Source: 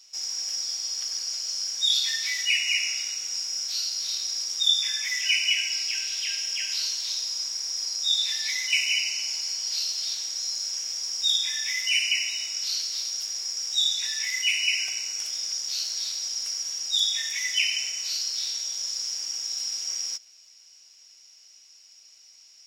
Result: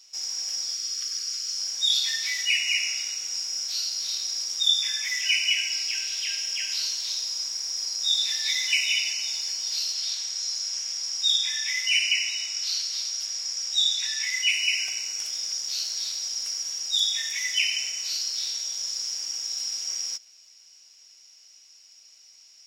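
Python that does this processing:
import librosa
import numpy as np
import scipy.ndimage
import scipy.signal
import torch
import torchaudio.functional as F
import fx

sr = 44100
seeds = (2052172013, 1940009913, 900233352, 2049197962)

y = fx.spec_erase(x, sr, start_s=0.74, length_s=0.83, low_hz=490.0, high_hz=1100.0)
y = fx.echo_throw(y, sr, start_s=7.61, length_s=0.74, ms=390, feedback_pct=50, wet_db=-6.0)
y = fx.weighting(y, sr, curve='A', at=(9.93, 14.52))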